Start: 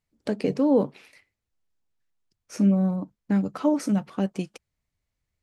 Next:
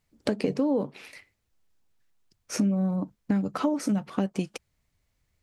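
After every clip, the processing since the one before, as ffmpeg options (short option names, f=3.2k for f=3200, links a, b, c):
-af "acompressor=threshold=-31dB:ratio=5,volume=7.5dB"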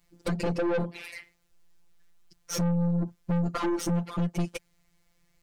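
-af "afftfilt=real='hypot(re,im)*cos(PI*b)':imag='0':win_size=1024:overlap=0.75,aeval=exprs='0.237*sin(PI/2*2.24*val(0)/0.237)':c=same,aeval=exprs='(tanh(15.8*val(0)+0.3)-tanh(0.3))/15.8':c=same"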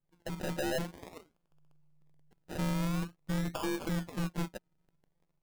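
-af "dynaudnorm=f=120:g=7:m=5dB,acrusher=samples=31:mix=1:aa=0.000001:lfo=1:lforange=18.6:lforate=0.48,tremolo=f=150:d=0.621,volume=-8.5dB"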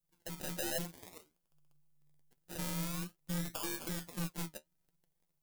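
-af "flanger=delay=5.5:depth=7.8:regen=48:speed=1.2:shape=sinusoidal,crystalizer=i=3.5:c=0,volume=-4dB"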